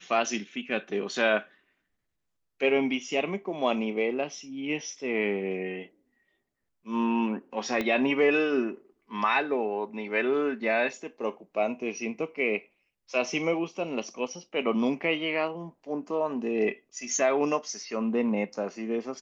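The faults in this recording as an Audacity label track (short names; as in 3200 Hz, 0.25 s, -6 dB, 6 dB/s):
7.810000	7.810000	pop -16 dBFS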